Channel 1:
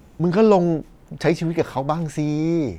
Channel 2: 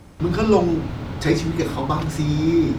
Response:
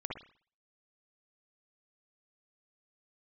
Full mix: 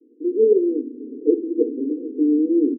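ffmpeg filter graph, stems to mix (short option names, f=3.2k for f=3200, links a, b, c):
-filter_complex "[0:a]volume=-3dB[a];[1:a]acompressor=threshold=-25dB:ratio=1.5,volume=-1,adelay=5.9,volume=-3dB[b];[a][b]amix=inputs=2:normalize=0,dynaudnorm=f=110:g=5:m=8dB,asuperpass=centerf=340:order=20:qfactor=1.4"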